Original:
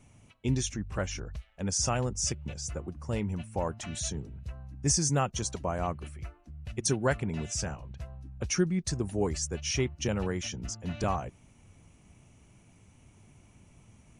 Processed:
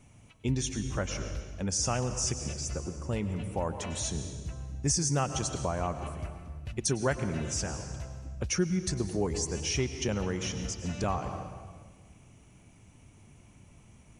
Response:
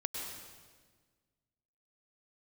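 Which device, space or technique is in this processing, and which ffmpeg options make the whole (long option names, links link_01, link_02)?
ducked reverb: -filter_complex "[0:a]asplit=3[link_01][link_02][link_03];[1:a]atrim=start_sample=2205[link_04];[link_02][link_04]afir=irnorm=-1:irlink=0[link_05];[link_03]apad=whole_len=626004[link_06];[link_05][link_06]sidechaincompress=threshold=-32dB:ratio=8:attack=39:release=257,volume=-2dB[link_07];[link_01][link_07]amix=inputs=2:normalize=0,volume=-3.5dB"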